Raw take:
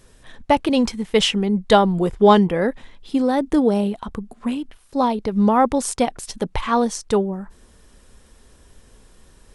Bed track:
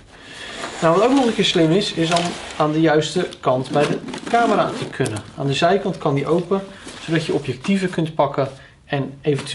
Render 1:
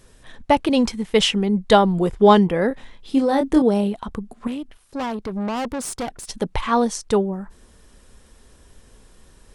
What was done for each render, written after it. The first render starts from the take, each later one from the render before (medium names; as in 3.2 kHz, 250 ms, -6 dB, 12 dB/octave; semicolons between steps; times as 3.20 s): 2.68–3.62 s: doubling 26 ms -6 dB; 4.47–6.29 s: valve stage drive 23 dB, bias 0.45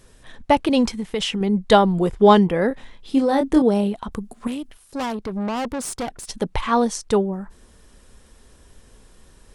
0.87–1.41 s: compression 4:1, threshold -21 dBFS; 4.12–5.13 s: treble shelf 5.7 kHz +10 dB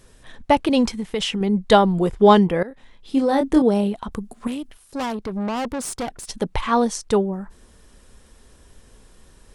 2.63–3.27 s: fade in, from -19 dB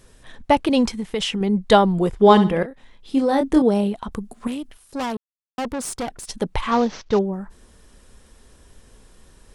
2.20–2.66 s: flutter echo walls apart 11.4 m, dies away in 0.36 s; 5.17–5.58 s: mute; 6.71–7.19 s: CVSD coder 32 kbps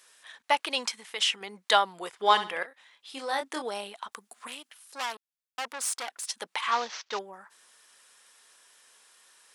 high-pass 1.2 kHz 12 dB/octave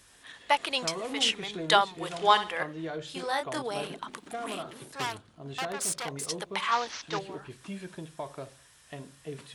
add bed track -21 dB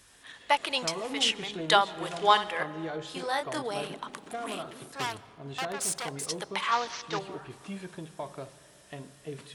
algorithmic reverb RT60 3.4 s, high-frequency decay 0.35×, pre-delay 95 ms, DRR 18.5 dB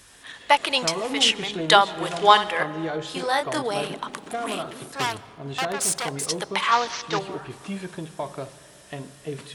trim +7 dB; peak limiter -1 dBFS, peak gain reduction 1 dB